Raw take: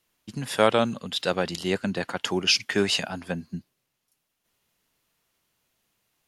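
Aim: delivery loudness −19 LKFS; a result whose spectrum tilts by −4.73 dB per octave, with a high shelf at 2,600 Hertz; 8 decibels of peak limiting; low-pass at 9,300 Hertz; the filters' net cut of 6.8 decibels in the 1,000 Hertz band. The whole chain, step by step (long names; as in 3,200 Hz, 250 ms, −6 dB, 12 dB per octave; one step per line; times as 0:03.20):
low-pass filter 9,300 Hz
parametric band 1,000 Hz −8.5 dB
high-shelf EQ 2,600 Hz −7.5 dB
level +12 dB
brickwall limiter −4 dBFS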